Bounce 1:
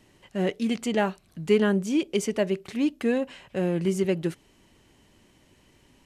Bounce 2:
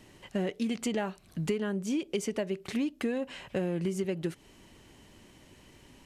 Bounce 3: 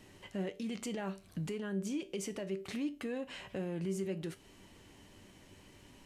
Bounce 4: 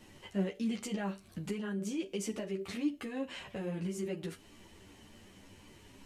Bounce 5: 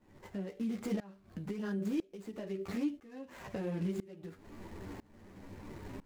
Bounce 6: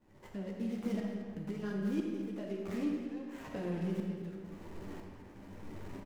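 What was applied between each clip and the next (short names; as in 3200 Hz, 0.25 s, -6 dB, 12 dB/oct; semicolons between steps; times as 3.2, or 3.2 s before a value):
compressor 12:1, threshold -31 dBFS, peak gain reduction 16 dB; gain +3.5 dB
limiter -28.5 dBFS, peak gain reduction 9.5 dB; resonator 97 Hz, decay 0.29 s, harmonics all, mix 60%; gain +3 dB
ensemble effect; gain +4.5 dB
median filter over 15 samples; compressor 3:1, threshold -47 dBFS, peak gain reduction 14.5 dB; tremolo saw up 1 Hz, depth 95%; gain +13 dB
median filter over 15 samples; echo 0.219 s -13 dB; digital reverb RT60 2 s, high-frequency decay 0.65×, pre-delay 5 ms, DRR 1 dB; gain -2 dB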